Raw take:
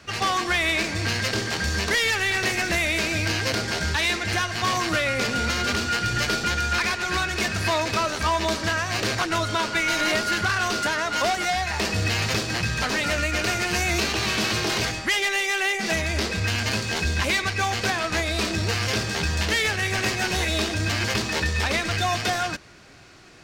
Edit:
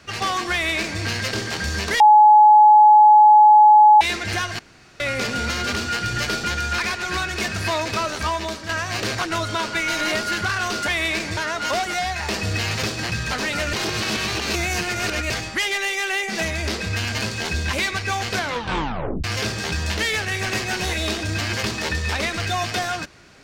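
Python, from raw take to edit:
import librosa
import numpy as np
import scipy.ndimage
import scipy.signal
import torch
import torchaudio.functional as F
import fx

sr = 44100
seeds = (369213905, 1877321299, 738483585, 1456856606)

y = fx.edit(x, sr, fx.duplicate(start_s=0.52, length_s=0.49, to_s=10.88),
    fx.bleep(start_s=2.0, length_s=2.01, hz=848.0, db=-7.0),
    fx.room_tone_fill(start_s=4.59, length_s=0.41),
    fx.fade_out_to(start_s=8.22, length_s=0.47, floor_db=-9.0),
    fx.reverse_span(start_s=13.24, length_s=1.57),
    fx.tape_stop(start_s=17.85, length_s=0.9), tone=tone)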